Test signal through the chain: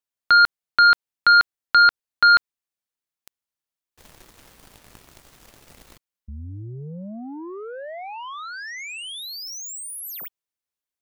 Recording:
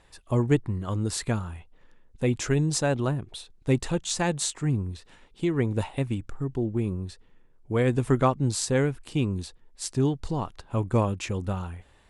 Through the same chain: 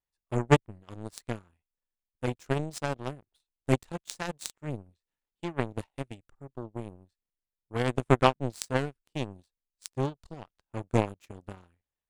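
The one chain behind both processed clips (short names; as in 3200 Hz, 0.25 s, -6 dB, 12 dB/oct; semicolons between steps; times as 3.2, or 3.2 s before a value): zero-crossing step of -35.5 dBFS; power-law curve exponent 3; gain +7 dB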